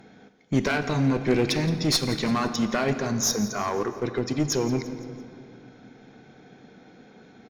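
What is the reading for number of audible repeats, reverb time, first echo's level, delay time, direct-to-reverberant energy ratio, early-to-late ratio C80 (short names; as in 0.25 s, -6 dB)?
4, 2.5 s, -17.5 dB, 0.17 s, 8.5 dB, 10.5 dB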